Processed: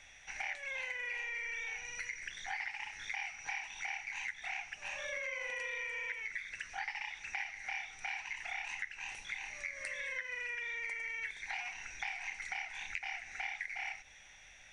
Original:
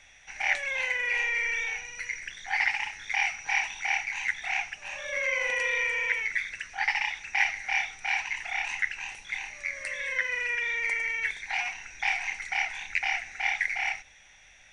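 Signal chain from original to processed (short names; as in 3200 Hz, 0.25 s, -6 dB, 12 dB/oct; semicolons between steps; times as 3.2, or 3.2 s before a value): compressor 6:1, threshold -36 dBFS, peak gain reduction 15.5 dB; gain -2 dB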